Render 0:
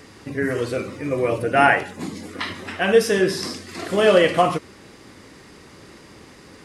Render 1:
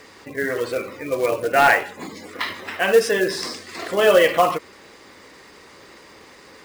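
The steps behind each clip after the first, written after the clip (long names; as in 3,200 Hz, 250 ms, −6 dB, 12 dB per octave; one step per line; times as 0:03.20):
gate on every frequency bin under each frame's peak −30 dB strong
octave-band graphic EQ 125/500/1,000/2,000/4,000/8,000 Hz −4/+7/+7/+7/+6/+7 dB
floating-point word with a short mantissa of 2 bits
level −7 dB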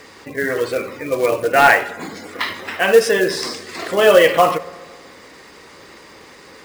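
convolution reverb RT60 1.7 s, pre-delay 3 ms, DRR 15.5 dB
level +3.5 dB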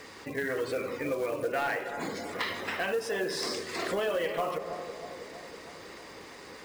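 downward compressor 6 to 1, threshold −22 dBFS, peak gain reduction 15.5 dB
soft clipping −17 dBFS, distortion −19 dB
bucket-brigade delay 321 ms, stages 2,048, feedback 63%, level −9.5 dB
level −5 dB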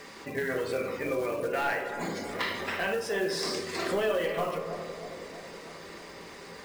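rectangular room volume 520 cubic metres, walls furnished, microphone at 1.2 metres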